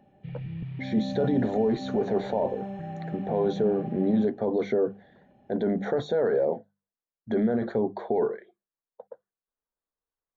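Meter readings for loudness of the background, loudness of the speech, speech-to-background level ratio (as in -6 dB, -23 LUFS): -36.0 LUFS, -27.5 LUFS, 8.5 dB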